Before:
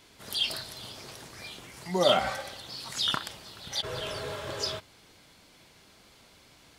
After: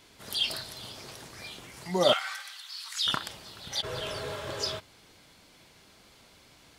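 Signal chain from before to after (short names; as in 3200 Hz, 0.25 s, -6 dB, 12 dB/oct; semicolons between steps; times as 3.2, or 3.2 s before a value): 2.13–3.07 HPF 1200 Hz 24 dB/oct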